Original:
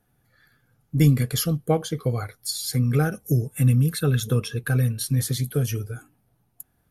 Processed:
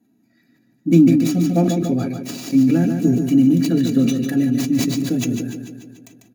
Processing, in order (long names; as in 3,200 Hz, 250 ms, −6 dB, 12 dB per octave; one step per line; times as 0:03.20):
stylus tracing distortion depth 0.42 ms
high-pass filter 63 Hz
parametric band 5,800 Hz +6.5 dB 0.5 octaves
comb filter 3.3 ms, depth 48%
repeating echo 159 ms, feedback 58%, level −8 dB
convolution reverb, pre-delay 3 ms, DRR 2.5 dB
wrong playback speed 44.1 kHz file played as 48 kHz
level that may fall only so fast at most 41 dB per second
level −9 dB